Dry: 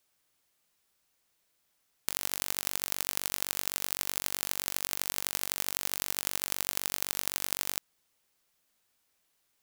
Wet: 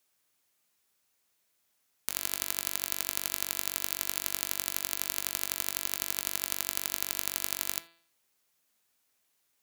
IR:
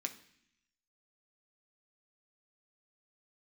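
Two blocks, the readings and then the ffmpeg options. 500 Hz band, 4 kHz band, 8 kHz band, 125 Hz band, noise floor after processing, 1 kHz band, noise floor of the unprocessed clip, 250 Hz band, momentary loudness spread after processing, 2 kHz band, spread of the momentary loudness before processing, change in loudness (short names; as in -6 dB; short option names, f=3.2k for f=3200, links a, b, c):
-2.5 dB, -1.0 dB, +0.5 dB, -3.0 dB, -75 dBFS, -1.5 dB, -75 dBFS, -1.5 dB, 1 LU, -1.0 dB, 1 LU, +0.5 dB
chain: -filter_complex "[0:a]highpass=49,bandreject=f=167.3:t=h:w=4,bandreject=f=334.6:t=h:w=4,bandreject=f=501.9:t=h:w=4,bandreject=f=669.2:t=h:w=4,bandreject=f=836.5:t=h:w=4,bandreject=f=1.0038k:t=h:w=4,bandreject=f=1.1711k:t=h:w=4,bandreject=f=1.3384k:t=h:w=4,bandreject=f=1.5057k:t=h:w=4,bandreject=f=1.673k:t=h:w=4,bandreject=f=1.8403k:t=h:w=4,bandreject=f=2.0076k:t=h:w=4,bandreject=f=2.1749k:t=h:w=4,bandreject=f=2.3422k:t=h:w=4,bandreject=f=2.5095k:t=h:w=4,bandreject=f=2.6768k:t=h:w=4,bandreject=f=2.8441k:t=h:w=4,bandreject=f=3.0114k:t=h:w=4,bandreject=f=3.1787k:t=h:w=4,bandreject=f=3.346k:t=h:w=4,bandreject=f=3.5133k:t=h:w=4,bandreject=f=3.6806k:t=h:w=4,bandreject=f=3.8479k:t=h:w=4,bandreject=f=4.0152k:t=h:w=4,bandreject=f=4.1825k:t=h:w=4,bandreject=f=4.3498k:t=h:w=4,bandreject=f=4.5171k:t=h:w=4,bandreject=f=4.6844k:t=h:w=4,asplit=2[a][b];[b]equalizer=f=13k:t=o:w=0.95:g=6.5[c];[1:a]atrim=start_sample=2205,afade=t=out:st=0.14:d=0.01,atrim=end_sample=6615[d];[c][d]afir=irnorm=-1:irlink=0,volume=-8dB[e];[a][e]amix=inputs=2:normalize=0,volume=-3dB"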